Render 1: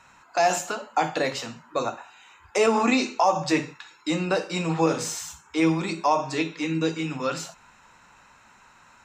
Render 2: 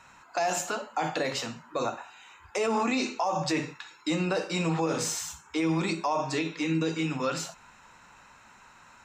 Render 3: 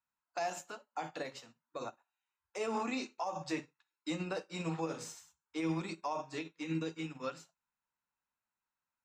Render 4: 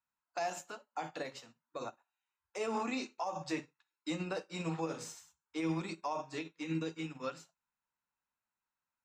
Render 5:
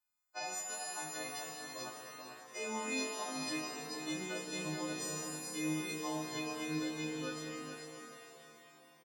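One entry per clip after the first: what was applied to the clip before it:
brickwall limiter −19 dBFS, peak gain reduction 9.5 dB
expander for the loud parts 2.5 to 1, over −47 dBFS; level −6.5 dB
no processing that can be heard
every partial snapped to a pitch grid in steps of 3 semitones; repeating echo 437 ms, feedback 26%, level −7.5 dB; reverb with rising layers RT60 3.8 s, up +7 semitones, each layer −8 dB, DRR 0.5 dB; level −6.5 dB

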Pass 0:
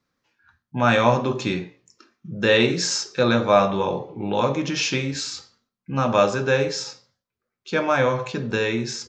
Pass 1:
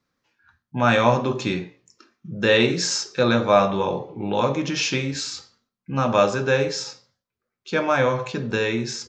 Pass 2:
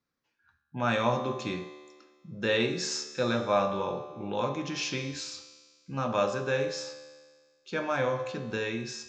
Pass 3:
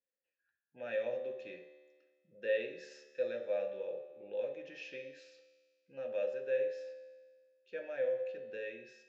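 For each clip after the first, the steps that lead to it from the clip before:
no processing that can be heard
tuned comb filter 74 Hz, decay 1.6 s, harmonics all, mix 70%
formant filter e; level −2 dB

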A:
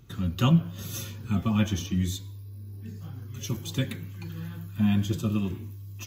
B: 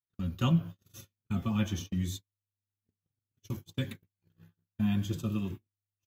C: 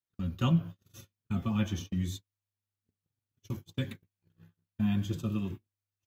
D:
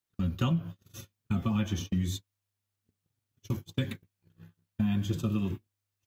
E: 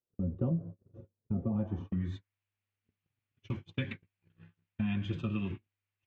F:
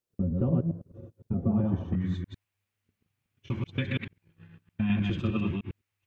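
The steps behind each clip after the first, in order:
noise gate −32 dBFS, range −48 dB; level −5.5 dB
high-shelf EQ 5,400 Hz −4.5 dB
downward compressor 6 to 1, threshold −30 dBFS, peak gain reduction 9.5 dB; level +5.5 dB
low-pass filter sweep 500 Hz → 2,500 Hz, 0:01.45–0:02.35; level −4.5 dB
delay that plays each chunk backwards 102 ms, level −1 dB; level +4 dB

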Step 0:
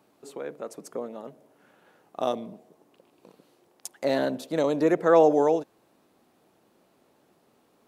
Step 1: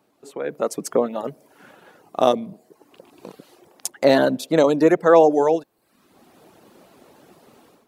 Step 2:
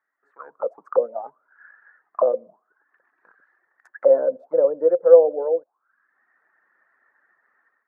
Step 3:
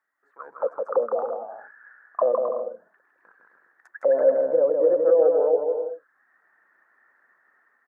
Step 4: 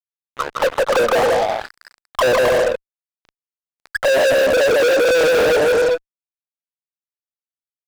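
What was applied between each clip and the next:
reverb reduction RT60 0.67 s; automatic gain control gain up to 16 dB; level −1 dB
high shelf with overshoot 2,100 Hz −13 dB, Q 3; envelope filter 520–1,900 Hz, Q 18, down, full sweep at −16.5 dBFS; level +8 dB
brickwall limiter −12.5 dBFS, peak gain reduction 11.5 dB; on a send: bouncing-ball delay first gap 160 ms, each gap 0.65×, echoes 5
fuzz pedal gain 35 dB, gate −44 dBFS

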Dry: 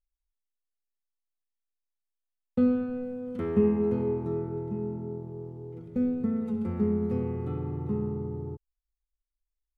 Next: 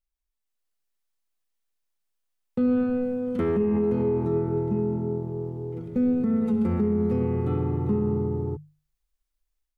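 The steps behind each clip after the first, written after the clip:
mains-hum notches 50/100/150 Hz
automatic gain control gain up to 8 dB
brickwall limiter −16.5 dBFS, peak gain reduction 11.5 dB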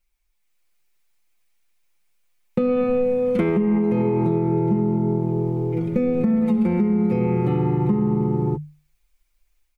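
parametric band 2,300 Hz +9 dB 0.32 octaves
comb filter 5.7 ms, depth 84%
downward compressor, threshold −25 dBFS, peak gain reduction 8 dB
level +8.5 dB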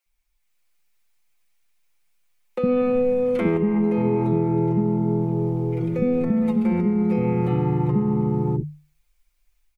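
multiband delay without the direct sound highs, lows 60 ms, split 370 Hz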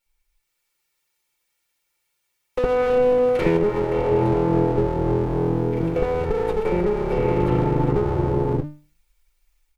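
lower of the sound and its delayed copy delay 2.2 ms
level +3.5 dB

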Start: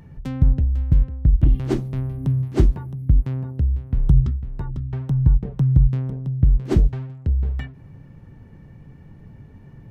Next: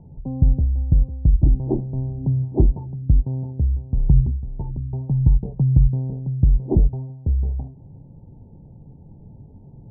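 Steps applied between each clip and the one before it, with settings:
Butterworth low-pass 920 Hz 72 dB per octave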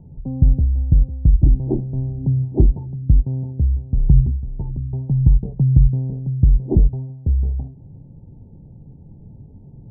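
tilt shelving filter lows +6 dB, about 850 Hz
level −3.5 dB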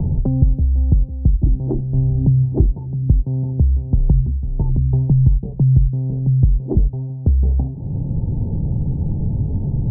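multiband upward and downward compressor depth 100%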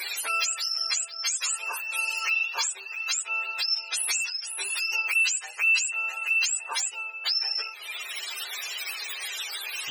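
frequency axis turned over on the octave scale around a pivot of 590 Hz
level −7 dB

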